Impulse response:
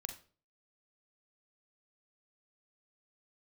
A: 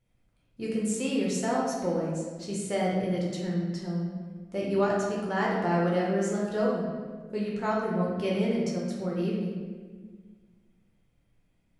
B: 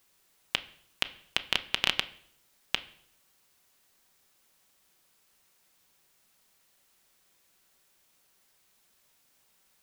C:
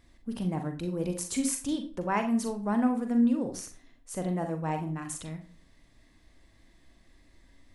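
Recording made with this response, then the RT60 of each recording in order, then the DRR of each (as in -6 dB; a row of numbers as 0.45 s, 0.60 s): C; 1.5 s, 0.70 s, 0.40 s; -4.5 dB, 9.5 dB, 5.5 dB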